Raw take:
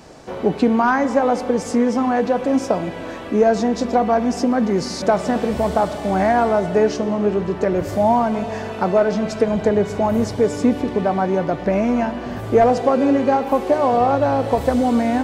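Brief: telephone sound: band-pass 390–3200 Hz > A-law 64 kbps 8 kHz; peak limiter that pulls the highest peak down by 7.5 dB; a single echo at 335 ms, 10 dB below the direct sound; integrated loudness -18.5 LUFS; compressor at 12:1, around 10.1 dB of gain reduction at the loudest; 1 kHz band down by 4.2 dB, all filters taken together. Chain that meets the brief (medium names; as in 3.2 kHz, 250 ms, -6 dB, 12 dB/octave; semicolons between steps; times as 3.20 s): peaking EQ 1 kHz -6 dB; compression 12:1, threshold -22 dBFS; peak limiter -18.5 dBFS; band-pass 390–3200 Hz; delay 335 ms -10 dB; trim +13 dB; A-law 64 kbps 8 kHz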